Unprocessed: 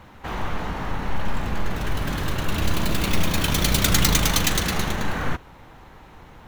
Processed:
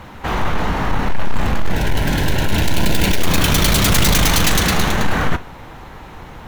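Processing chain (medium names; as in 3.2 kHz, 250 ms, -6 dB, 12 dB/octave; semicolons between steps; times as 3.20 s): sine folder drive 14 dB, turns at -1.5 dBFS; 1.71–3.22 s: Butterworth band-stop 1.2 kHz, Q 3.7; reverberation RT60 0.40 s, pre-delay 21 ms, DRR 16 dB; trim -8 dB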